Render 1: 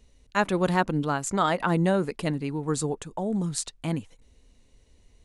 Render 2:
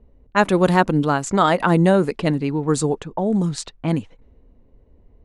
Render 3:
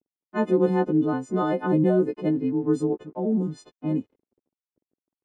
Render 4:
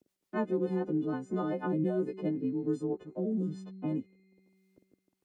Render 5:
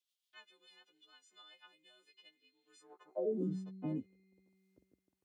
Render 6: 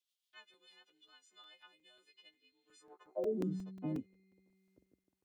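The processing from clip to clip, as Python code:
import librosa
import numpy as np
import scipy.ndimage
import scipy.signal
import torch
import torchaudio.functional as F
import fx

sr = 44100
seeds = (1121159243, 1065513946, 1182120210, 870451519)

y1 = fx.env_lowpass(x, sr, base_hz=850.0, full_db=-22.0)
y1 = fx.peak_eq(y1, sr, hz=370.0, db=2.5, octaves=2.7)
y1 = y1 * 10.0 ** (6.0 / 20.0)
y2 = fx.freq_snap(y1, sr, grid_st=3)
y2 = np.sign(y2) * np.maximum(np.abs(y2) - 10.0 ** (-47.0 / 20.0), 0.0)
y2 = fx.bandpass_q(y2, sr, hz=300.0, q=1.8)
y2 = y2 * 10.0 ** (1.0 / 20.0)
y3 = fx.rotary_switch(y2, sr, hz=6.7, then_hz=1.2, switch_at_s=1.0)
y3 = fx.comb_fb(y3, sr, f0_hz=190.0, decay_s=1.7, harmonics='all', damping=0.0, mix_pct=60)
y3 = fx.band_squash(y3, sr, depth_pct=70)
y4 = fx.filter_sweep_highpass(y3, sr, from_hz=3300.0, to_hz=61.0, start_s=2.66, end_s=3.88, q=3.4)
y4 = y4 * 10.0 ** (-6.0 / 20.0)
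y5 = fx.buffer_crackle(y4, sr, first_s=0.54, period_s=0.18, block=128, kind='zero')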